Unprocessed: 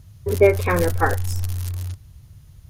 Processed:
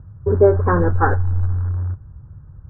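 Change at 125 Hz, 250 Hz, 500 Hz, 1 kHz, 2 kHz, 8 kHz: +5.5 dB, +4.0 dB, +2.0 dB, +3.5 dB, -1.5 dB, under -40 dB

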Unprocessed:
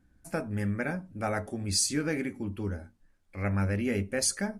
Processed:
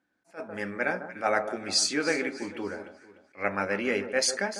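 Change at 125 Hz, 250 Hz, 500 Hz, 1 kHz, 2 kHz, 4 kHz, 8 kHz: -14.0, -2.5, +4.5, +6.5, +7.0, +5.0, 0.0 dB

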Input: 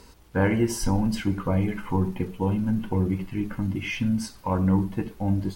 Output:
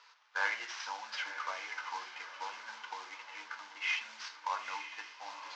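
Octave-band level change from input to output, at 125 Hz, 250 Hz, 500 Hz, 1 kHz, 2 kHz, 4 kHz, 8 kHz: under -40 dB, under -40 dB, -23.0 dB, -5.0 dB, -0.5 dB, -1.5 dB, -12.0 dB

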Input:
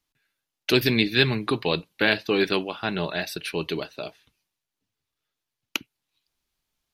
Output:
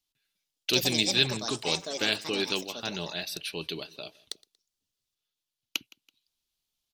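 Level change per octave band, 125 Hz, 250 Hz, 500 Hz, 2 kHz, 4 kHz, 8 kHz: -8.5, -8.5, -8.0, -7.5, 0.0, +8.5 dB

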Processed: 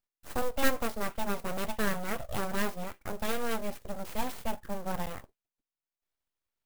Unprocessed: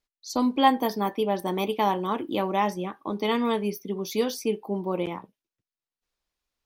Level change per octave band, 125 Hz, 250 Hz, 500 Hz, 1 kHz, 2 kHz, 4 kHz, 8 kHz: -5.0, -10.0, -8.5, -10.5, -0.5, -7.5, -0.5 dB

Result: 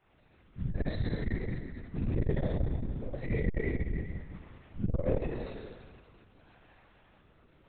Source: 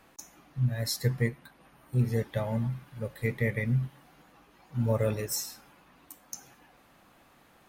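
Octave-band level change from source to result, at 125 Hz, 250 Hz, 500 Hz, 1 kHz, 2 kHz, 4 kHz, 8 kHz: -5.0 dB, -1.5 dB, -3.0 dB, -5.0 dB, -6.0 dB, -14.0 dB, under -40 dB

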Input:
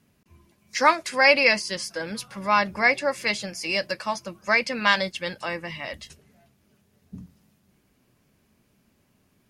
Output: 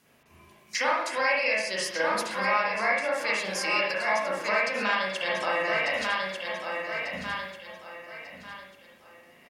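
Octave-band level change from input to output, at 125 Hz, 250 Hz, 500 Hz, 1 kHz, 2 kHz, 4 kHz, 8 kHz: -6.5, -6.0, -2.0, -2.5, -2.5, -3.5, -1.5 dB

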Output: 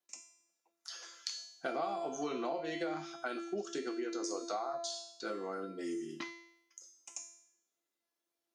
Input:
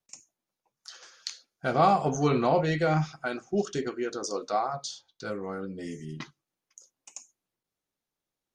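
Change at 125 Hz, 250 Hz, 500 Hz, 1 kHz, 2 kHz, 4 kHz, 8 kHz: -25.5, -9.0, -9.5, -13.0, -8.5, -4.0, -3.5 dB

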